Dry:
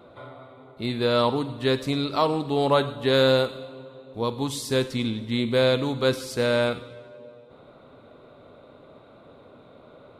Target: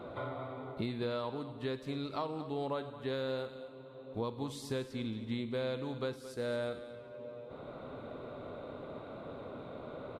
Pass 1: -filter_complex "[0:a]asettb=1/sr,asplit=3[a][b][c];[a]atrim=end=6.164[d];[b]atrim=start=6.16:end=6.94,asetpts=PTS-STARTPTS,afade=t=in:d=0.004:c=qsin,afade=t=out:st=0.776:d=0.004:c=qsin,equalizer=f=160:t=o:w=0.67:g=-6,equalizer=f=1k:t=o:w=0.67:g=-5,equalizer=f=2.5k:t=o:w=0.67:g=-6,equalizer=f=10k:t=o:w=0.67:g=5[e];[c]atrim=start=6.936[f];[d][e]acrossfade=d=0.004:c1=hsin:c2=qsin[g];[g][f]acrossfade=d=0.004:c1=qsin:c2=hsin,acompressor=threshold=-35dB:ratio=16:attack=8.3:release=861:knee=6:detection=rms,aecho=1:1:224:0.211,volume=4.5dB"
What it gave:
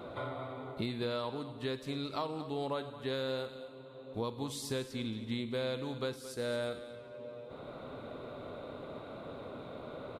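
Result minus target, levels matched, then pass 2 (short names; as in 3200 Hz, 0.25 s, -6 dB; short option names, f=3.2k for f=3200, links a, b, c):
8000 Hz band +6.0 dB
-filter_complex "[0:a]asettb=1/sr,asplit=3[a][b][c];[a]atrim=end=6.164[d];[b]atrim=start=6.16:end=6.94,asetpts=PTS-STARTPTS,afade=t=in:d=0.004:c=qsin,afade=t=out:st=0.776:d=0.004:c=qsin,equalizer=f=160:t=o:w=0.67:g=-6,equalizer=f=1k:t=o:w=0.67:g=-5,equalizer=f=2.5k:t=o:w=0.67:g=-6,equalizer=f=10k:t=o:w=0.67:g=5[e];[c]atrim=start=6.936[f];[d][e]acrossfade=d=0.004:c1=hsin:c2=qsin[g];[g][f]acrossfade=d=0.004:c1=qsin:c2=hsin,acompressor=threshold=-35dB:ratio=16:attack=8.3:release=861:knee=6:detection=rms,highshelf=f=3.5k:g=-8,aecho=1:1:224:0.211,volume=4.5dB"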